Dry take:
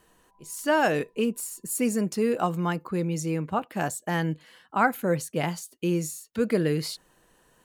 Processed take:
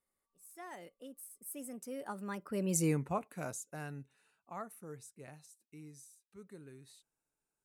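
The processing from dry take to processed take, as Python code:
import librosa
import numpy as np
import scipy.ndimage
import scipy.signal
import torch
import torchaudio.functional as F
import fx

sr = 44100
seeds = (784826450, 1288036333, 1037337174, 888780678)

y = fx.doppler_pass(x, sr, speed_mps=48, closest_m=7.8, pass_at_s=2.84)
y = fx.peak_eq(y, sr, hz=9800.0, db=10.0, octaves=0.9)
y = fx.notch(y, sr, hz=3300.0, q=7.6)
y = y * librosa.db_to_amplitude(-2.5)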